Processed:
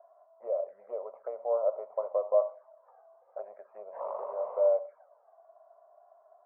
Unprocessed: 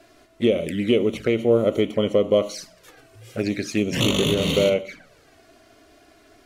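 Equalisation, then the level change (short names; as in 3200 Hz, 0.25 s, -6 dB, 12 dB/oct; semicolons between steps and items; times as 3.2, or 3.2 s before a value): elliptic high-pass 610 Hz, stop band 50 dB; elliptic low-pass 1000 Hz, stop band 70 dB; 0.0 dB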